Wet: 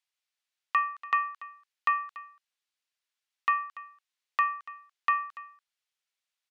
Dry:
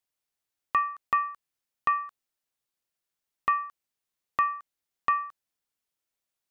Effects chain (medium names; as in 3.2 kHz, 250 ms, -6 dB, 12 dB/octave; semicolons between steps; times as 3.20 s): band-pass filter 2.9 kHz, Q 0.73; on a send: delay 287 ms -18 dB; on the sum: trim +4 dB